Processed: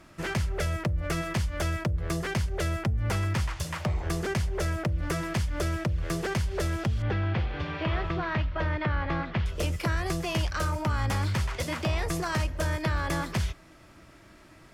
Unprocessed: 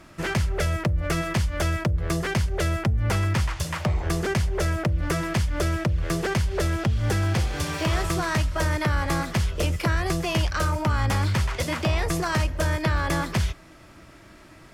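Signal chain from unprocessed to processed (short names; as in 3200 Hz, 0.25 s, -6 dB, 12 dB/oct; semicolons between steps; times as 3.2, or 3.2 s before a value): 7.02–9.46 LPF 3400 Hz 24 dB/oct; gain -4.5 dB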